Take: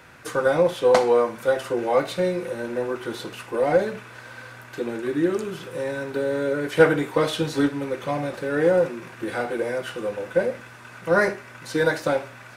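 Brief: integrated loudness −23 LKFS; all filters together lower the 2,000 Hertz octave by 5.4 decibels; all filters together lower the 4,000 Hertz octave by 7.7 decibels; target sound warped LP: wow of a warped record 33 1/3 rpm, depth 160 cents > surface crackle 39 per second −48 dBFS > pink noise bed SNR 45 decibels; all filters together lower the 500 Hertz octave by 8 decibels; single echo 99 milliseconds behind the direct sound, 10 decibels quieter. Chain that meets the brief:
parametric band 500 Hz −8.5 dB
parametric band 2,000 Hz −6 dB
parametric band 4,000 Hz −7.5 dB
single-tap delay 99 ms −10 dB
wow of a warped record 33 1/3 rpm, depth 160 cents
surface crackle 39 per second −48 dBFS
pink noise bed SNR 45 dB
level +6.5 dB

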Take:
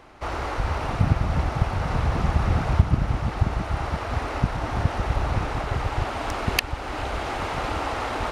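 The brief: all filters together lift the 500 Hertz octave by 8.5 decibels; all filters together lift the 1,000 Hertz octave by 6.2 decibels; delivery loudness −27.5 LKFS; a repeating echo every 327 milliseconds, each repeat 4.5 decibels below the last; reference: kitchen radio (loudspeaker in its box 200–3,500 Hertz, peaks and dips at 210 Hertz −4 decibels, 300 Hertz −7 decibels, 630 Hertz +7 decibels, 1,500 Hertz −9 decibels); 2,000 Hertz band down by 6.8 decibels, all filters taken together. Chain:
loudspeaker in its box 200–3,500 Hz, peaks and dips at 210 Hz −4 dB, 300 Hz −7 dB, 630 Hz +7 dB, 1,500 Hz −9 dB
parametric band 500 Hz +4 dB
parametric band 1,000 Hz +7.5 dB
parametric band 2,000 Hz −7 dB
repeating echo 327 ms, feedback 60%, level −4.5 dB
level −4 dB

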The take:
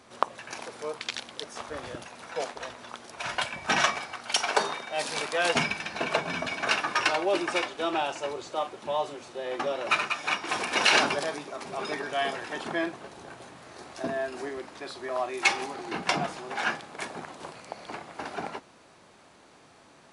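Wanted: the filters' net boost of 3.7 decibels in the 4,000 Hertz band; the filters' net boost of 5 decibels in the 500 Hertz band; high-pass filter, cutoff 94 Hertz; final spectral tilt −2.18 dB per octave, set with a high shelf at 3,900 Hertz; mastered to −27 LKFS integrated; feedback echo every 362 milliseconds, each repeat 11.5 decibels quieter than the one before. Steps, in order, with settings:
high-pass filter 94 Hz
parametric band 500 Hz +6.5 dB
high-shelf EQ 3,900 Hz −3.5 dB
parametric band 4,000 Hz +7 dB
repeating echo 362 ms, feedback 27%, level −11.5 dB
level −0.5 dB

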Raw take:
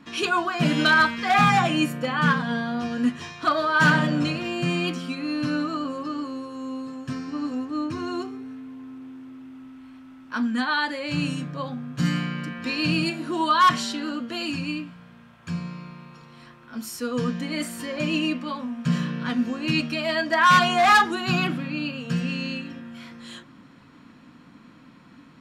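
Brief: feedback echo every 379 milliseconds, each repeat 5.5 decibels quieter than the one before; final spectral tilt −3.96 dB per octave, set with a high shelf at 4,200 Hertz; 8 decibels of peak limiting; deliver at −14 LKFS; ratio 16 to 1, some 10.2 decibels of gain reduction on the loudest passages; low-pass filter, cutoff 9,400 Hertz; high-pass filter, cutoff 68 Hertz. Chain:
high-pass filter 68 Hz
low-pass filter 9,400 Hz
high-shelf EQ 4,200 Hz −3.5 dB
downward compressor 16 to 1, threshold −23 dBFS
brickwall limiter −23 dBFS
repeating echo 379 ms, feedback 53%, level −5.5 dB
level +16.5 dB

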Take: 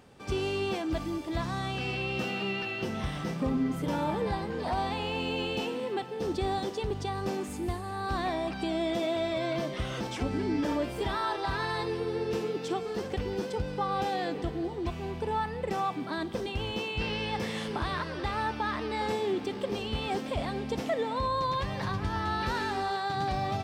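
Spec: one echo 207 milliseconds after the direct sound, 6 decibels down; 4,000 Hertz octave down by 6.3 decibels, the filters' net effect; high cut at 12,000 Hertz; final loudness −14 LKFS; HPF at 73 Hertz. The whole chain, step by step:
high-pass filter 73 Hz
low-pass filter 12,000 Hz
parametric band 4,000 Hz −8.5 dB
single-tap delay 207 ms −6 dB
level +18 dB

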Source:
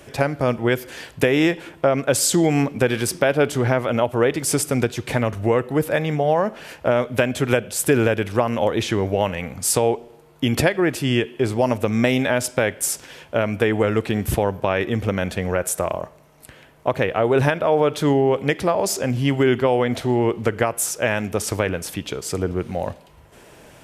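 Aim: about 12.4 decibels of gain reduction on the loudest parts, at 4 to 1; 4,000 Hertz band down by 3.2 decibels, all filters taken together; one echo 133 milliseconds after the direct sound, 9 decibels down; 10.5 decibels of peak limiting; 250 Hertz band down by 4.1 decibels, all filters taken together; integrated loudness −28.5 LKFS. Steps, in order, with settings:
parametric band 250 Hz −5.5 dB
parametric band 4,000 Hz −4.5 dB
downward compressor 4 to 1, threshold −30 dBFS
brickwall limiter −24.5 dBFS
single-tap delay 133 ms −9 dB
level +6.5 dB

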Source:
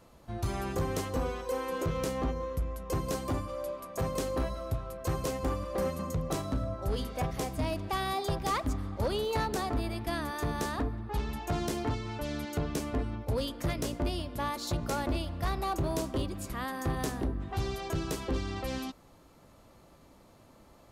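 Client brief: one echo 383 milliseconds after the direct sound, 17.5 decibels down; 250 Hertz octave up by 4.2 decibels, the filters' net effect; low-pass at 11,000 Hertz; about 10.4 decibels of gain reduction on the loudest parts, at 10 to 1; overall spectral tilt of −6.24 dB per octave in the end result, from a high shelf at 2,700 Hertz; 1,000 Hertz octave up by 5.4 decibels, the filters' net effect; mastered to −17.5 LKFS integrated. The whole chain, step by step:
low-pass filter 11,000 Hz
parametric band 250 Hz +5 dB
parametric band 1,000 Hz +7.5 dB
high-shelf EQ 2,700 Hz −7 dB
downward compressor 10 to 1, threshold −35 dBFS
single-tap delay 383 ms −17.5 dB
level +22 dB

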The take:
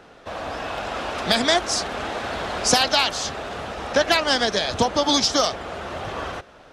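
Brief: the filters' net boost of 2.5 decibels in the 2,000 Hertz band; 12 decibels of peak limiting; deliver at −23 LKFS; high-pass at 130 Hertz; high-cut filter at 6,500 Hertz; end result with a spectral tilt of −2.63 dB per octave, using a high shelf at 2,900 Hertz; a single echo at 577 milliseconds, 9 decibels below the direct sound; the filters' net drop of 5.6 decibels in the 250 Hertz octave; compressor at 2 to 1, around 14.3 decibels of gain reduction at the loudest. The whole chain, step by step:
high-pass filter 130 Hz
low-pass filter 6,500 Hz
parametric band 250 Hz −6.5 dB
parametric band 2,000 Hz +6.5 dB
high-shelf EQ 2,900 Hz −8.5 dB
downward compressor 2 to 1, threshold −42 dBFS
brickwall limiter −30.5 dBFS
single-tap delay 577 ms −9 dB
level +16 dB

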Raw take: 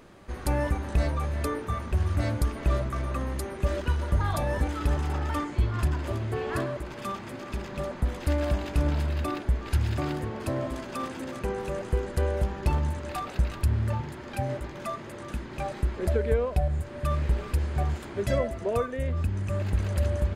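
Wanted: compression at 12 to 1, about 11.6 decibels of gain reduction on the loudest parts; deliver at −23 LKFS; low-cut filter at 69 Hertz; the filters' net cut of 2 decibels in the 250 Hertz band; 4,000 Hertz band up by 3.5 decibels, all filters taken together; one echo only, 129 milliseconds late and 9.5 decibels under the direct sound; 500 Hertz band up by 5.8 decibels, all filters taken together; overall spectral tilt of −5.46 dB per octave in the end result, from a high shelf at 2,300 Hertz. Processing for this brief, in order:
high-pass filter 69 Hz
parametric band 250 Hz −6 dB
parametric band 500 Hz +8.5 dB
high-shelf EQ 2,300 Hz −4 dB
parametric band 4,000 Hz +8 dB
downward compressor 12 to 1, threshold −28 dBFS
single-tap delay 129 ms −9.5 dB
level +11 dB

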